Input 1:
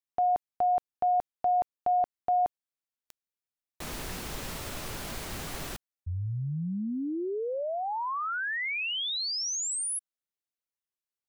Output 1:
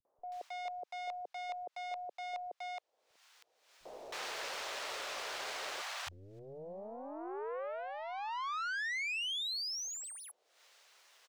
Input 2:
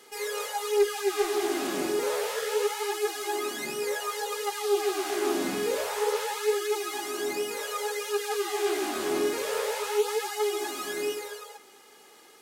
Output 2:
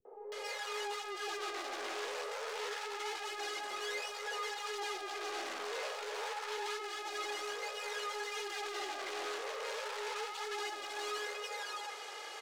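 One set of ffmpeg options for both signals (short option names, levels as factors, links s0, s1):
-filter_complex "[0:a]highpass=f=120:p=1,aeval=exprs='(tanh(70.8*val(0)+0.4)-tanh(0.4))/70.8':c=same,lowshelf=f=380:t=q:w=1.5:g=-12.5,areverse,acompressor=threshold=0.00355:ratio=5:attack=3:release=31:knee=1:detection=peak,areverse,acrossover=split=280 6700:gain=0.2 1 0.126[s0][s1][s2];[s0][s1][s2]amix=inputs=3:normalize=0,acompressor=mode=upward:threshold=0.00112:ratio=4:attack=0.35:release=284:knee=2.83:detection=peak,acrossover=split=160|710[s3][s4][s5];[s4]adelay=50[s6];[s5]adelay=320[s7];[s3][s6][s7]amix=inputs=3:normalize=0,volume=3.76"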